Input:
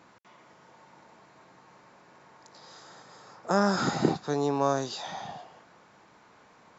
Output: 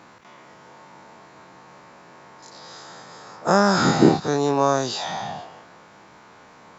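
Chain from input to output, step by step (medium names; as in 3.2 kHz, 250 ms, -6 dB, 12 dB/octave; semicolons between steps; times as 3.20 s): every event in the spectrogram widened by 60 ms; trim +5 dB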